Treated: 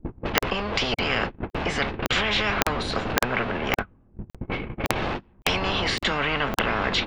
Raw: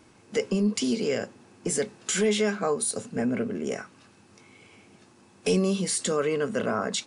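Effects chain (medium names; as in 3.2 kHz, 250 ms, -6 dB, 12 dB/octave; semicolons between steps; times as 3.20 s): jump at every zero crossing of -37 dBFS; wind noise 83 Hz -28 dBFS; gate -30 dBFS, range -38 dB; low-pass 3.3 kHz 24 dB/octave; bass shelf 420 Hz +8 dB; level-controlled noise filter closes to 470 Hz, open at -18 dBFS; crackling interface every 0.56 s, samples 2048, zero, from 0.38 s; spectrum-flattening compressor 10:1; trim -2.5 dB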